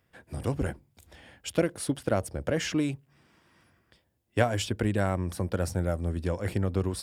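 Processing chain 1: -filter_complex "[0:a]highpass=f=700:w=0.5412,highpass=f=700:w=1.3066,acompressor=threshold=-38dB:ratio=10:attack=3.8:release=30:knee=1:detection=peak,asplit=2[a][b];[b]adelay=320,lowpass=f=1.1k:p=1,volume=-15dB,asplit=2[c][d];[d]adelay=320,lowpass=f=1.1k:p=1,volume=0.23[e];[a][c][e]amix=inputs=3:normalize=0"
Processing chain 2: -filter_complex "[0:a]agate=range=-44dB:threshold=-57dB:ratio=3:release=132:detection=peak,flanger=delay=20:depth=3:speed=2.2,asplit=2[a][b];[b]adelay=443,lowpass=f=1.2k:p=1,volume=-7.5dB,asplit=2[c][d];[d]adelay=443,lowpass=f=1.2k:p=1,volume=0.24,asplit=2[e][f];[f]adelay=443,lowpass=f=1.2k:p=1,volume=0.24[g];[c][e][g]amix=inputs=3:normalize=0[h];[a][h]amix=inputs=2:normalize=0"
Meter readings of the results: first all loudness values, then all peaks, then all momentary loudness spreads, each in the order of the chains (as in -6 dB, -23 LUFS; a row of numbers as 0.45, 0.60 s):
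-42.5, -32.5 LUFS; -21.0, -13.0 dBFS; 13, 12 LU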